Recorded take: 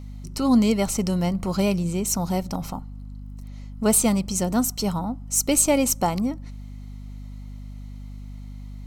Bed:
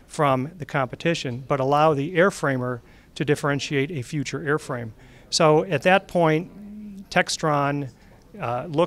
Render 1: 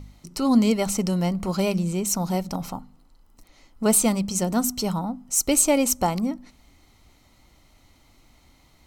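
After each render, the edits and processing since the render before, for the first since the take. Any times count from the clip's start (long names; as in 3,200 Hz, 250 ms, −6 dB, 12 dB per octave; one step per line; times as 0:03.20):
hum removal 50 Hz, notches 5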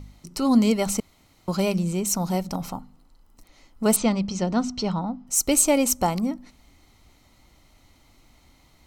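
0:01.00–0:01.48: fill with room tone
0:03.96–0:05.27: low-pass filter 5,300 Hz 24 dB per octave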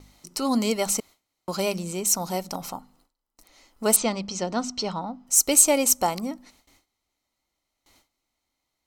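noise gate with hold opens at −44 dBFS
bass and treble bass −11 dB, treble +4 dB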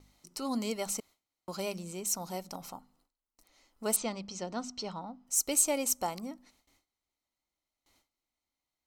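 level −10 dB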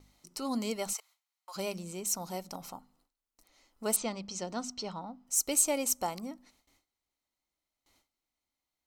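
0:00.93–0:01.56: high-pass filter 810 Hz 24 dB per octave
0:04.29–0:04.74: high-shelf EQ 8,500 Hz +11 dB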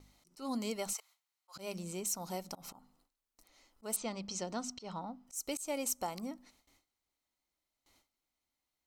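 downward compressor 2 to 1, threshold −36 dBFS, peak gain reduction 8.5 dB
volume swells 136 ms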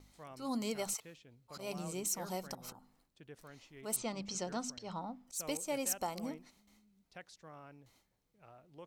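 mix in bed −32 dB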